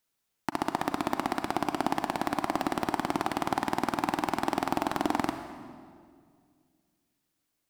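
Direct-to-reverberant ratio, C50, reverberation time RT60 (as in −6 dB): 7.5 dB, 8.5 dB, 2.1 s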